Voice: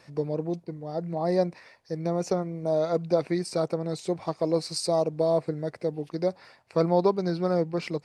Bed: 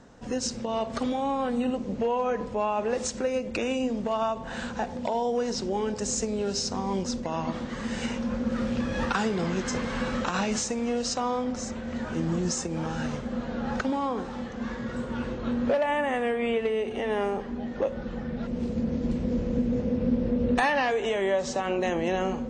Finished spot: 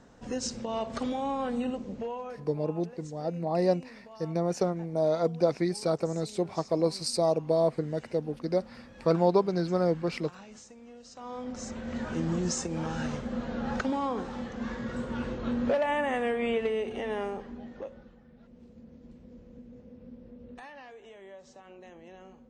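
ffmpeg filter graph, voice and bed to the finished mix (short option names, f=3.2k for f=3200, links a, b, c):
-filter_complex "[0:a]adelay=2300,volume=-1dB[a];[1:a]volume=16dB,afade=t=out:st=1.57:d=0.94:silence=0.125893,afade=t=in:st=11.12:d=0.79:silence=0.105925,afade=t=out:st=16.63:d=1.54:silence=0.0891251[b];[a][b]amix=inputs=2:normalize=0"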